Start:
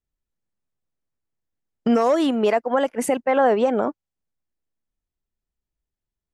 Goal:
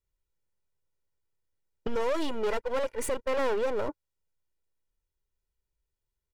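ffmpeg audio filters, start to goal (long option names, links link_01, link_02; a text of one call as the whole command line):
ffmpeg -i in.wav -filter_complex "[0:a]asettb=1/sr,asplit=3[link_01][link_02][link_03];[link_01]atrim=end=1.874[link_04];[link_02]atrim=start=1.87:end=3.89,asetpts=PTS-STARTPTS,afade=type=in:duration=0.004:curve=qsin,afade=type=out:start_time=2.016:duration=0.004:curve=qsin,aeval=exprs='if(lt(val(0),0),0.251*val(0),val(0))':channel_layout=same[link_05];[link_03]atrim=start=3.886[link_06];[link_04][link_05]acrossfade=duration=0.004:curve1=hsin:curve2=qsin[link_07];[link_07][link_06]acrossfade=duration=0.004:curve1=qsin:curve2=hsin,aecho=1:1:2.1:0.62,asoftclip=type=tanh:threshold=-21.5dB,volume=-2dB" out.wav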